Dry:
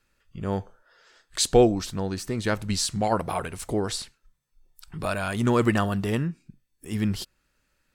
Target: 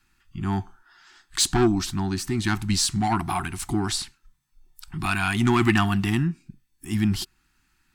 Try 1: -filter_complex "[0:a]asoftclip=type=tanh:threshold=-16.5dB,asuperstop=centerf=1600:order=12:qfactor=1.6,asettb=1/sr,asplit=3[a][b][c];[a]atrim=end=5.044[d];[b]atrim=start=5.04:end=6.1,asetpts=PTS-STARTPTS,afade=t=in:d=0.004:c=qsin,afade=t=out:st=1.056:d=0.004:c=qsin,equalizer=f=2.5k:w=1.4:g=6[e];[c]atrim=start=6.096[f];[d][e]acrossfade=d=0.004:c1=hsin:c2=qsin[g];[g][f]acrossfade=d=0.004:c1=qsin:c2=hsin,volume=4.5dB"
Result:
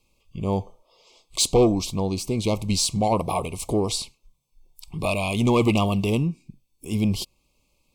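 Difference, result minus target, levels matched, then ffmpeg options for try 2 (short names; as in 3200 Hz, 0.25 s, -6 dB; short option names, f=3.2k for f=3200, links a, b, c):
2000 Hz band -7.0 dB
-filter_complex "[0:a]asoftclip=type=tanh:threshold=-16.5dB,asuperstop=centerf=520:order=12:qfactor=1.6,asettb=1/sr,asplit=3[a][b][c];[a]atrim=end=5.044[d];[b]atrim=start=5.04:end=6.1,asetpts=PTS-STARTPTS,afade=t=in:d=0.004:c=qsin,afade=t=out:st=1.056:d=0.004:c=qsin,equalizer=f=2.5k:w=1.4:g=6[e];[c]atrim=start=6.096[f];[d][e]acrossfade=d=0.004:c1=hsin:c2=qsin[g];[g][f]acrossfade=d=0.004:c1=qsin:c2=hsin,volume=4.5dB"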